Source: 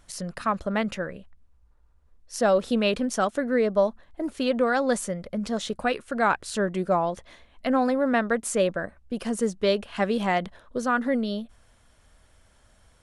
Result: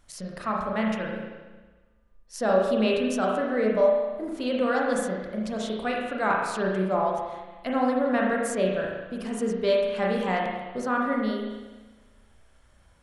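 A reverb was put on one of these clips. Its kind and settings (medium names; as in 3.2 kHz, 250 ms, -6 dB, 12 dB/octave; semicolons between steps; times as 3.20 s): spring tank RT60 1.3 s, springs 32/37 ms, chirp 50 ms, DRR -2 dB; trim -5 dB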